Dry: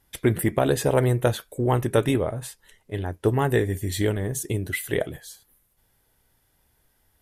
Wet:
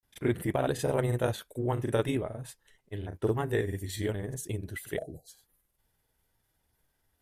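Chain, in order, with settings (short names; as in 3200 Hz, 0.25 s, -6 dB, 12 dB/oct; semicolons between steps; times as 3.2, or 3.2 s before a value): spectral delete 5.01–5.28, 820–3900 Hz; grains, spray 33 ms, pitch spread up and down by 0 st; gain -7 dB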